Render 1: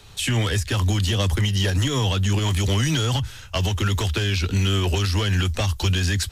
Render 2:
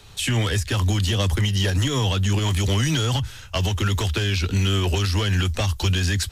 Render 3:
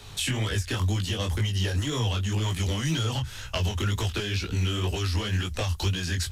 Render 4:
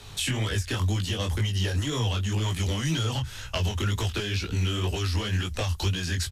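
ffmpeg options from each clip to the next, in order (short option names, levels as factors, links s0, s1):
-af anull
-af "acompressor=threshold=0.0316:ratio=3,flanger=delay=17:depth=7.1:speed=2,volume=1.88"
-af "aresample=32000,aresample=44100"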